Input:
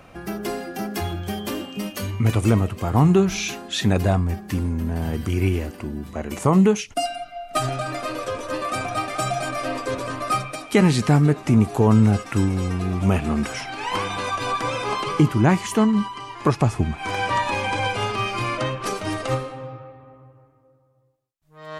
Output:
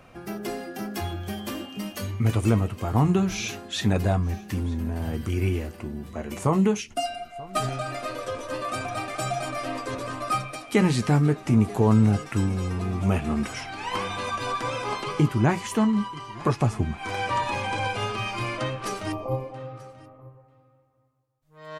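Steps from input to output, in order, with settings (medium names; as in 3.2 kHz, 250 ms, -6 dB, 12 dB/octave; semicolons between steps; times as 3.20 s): 19.12–19.55 s: brick-wall FIR band-stop 1.2–11 kHz; flange 0.13 Hz, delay 8 ms, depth 1.2 ms, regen -56%; delay 935 ms -22 dB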